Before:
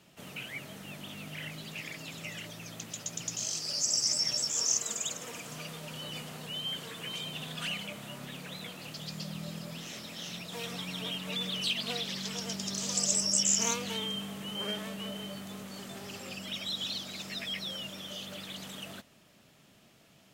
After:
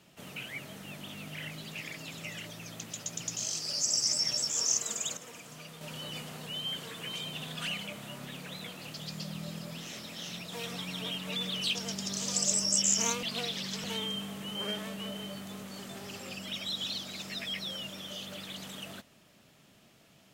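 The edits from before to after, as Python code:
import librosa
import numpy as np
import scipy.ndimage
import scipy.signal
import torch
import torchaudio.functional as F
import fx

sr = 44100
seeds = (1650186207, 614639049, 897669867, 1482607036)

y = fx.edit(x, sr, fx.clip_gain(start_s=5.17, length_s=0.64, db=-5.5),
    fx.move(start_s=11.75, length_s=0.61, to_s=13.84), tone=tone)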